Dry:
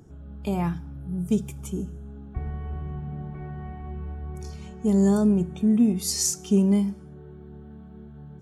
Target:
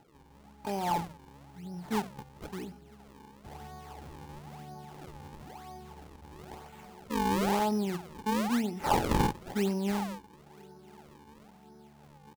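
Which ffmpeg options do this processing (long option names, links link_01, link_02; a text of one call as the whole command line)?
ffmpeg -i in.wav -filter_complex "[0:a]atempo=0.68,highpass=frequency=640:poles=1,asplit=2[link_01][link_02];[link_02]adelay=991.3,volume=-28dB,highshelf=frequency=4000:gain=-22.3[link_03];[link_01][link_03]amix=inputs=2:normalize=0,acrusher=samples=38:mix=1:aa=0.000001:lfo=1:lforange=60.8:lforate=1,equalizer=frequency=850:width=6.2:gain=14,volume=-1.5dB" out.wav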